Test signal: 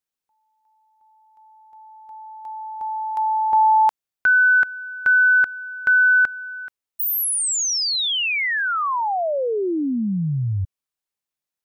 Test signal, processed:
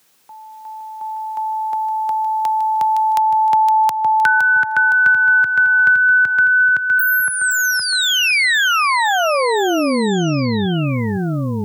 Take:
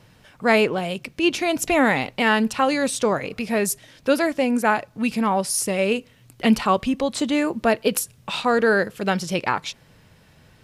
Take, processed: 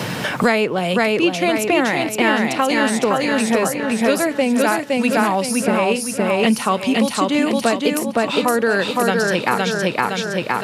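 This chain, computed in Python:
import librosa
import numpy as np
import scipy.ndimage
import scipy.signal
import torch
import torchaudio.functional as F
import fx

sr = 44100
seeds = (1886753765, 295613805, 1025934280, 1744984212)

p1 = scipy.signal.sosfilt(scipy.signal.butter(4, 110.0, 'highpass', fs=sr, output='sos'), x)
p2 = p1 + fx.echo_feedback(p1, sr, ms=514, feedback_pct=42, wet_db=-3, dry=0)
p3 = fx.band_squash(p2, sr, depth_pct=100)
y = p3 * librosa.db_to_amplitude(1.0)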